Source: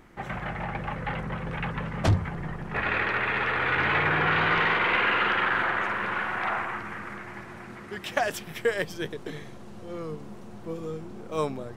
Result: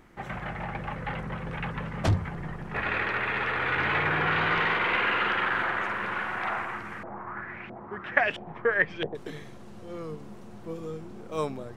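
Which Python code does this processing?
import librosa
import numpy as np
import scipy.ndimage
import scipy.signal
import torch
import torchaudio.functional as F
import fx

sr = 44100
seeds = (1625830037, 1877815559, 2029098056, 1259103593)

y = fx.filter_lfo_lowpass(x, sr, shape='saw_up', hz=1.5, low_hz=630.0, high_hz=3000.0, q=4.2, at=(7.03, 9.15))
y = y * librosa.db_to_amplitude(-2.0)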